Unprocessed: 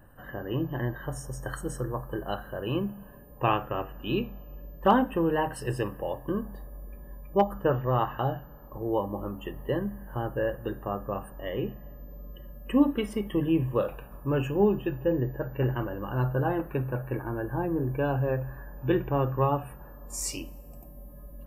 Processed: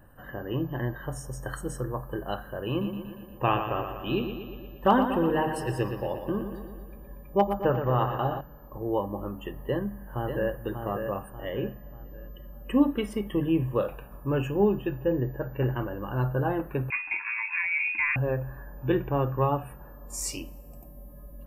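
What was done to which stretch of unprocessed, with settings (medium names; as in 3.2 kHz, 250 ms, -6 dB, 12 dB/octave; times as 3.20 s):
2.69–8.41 s: bucket-brigade echo 118 ms, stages 4096, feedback 62%, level -8 dB
9.58–10.62 s: echo throw 590 ms, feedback 40%, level -6 dB
16.90–18.16 s: frequency inversion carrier 2.6 kHz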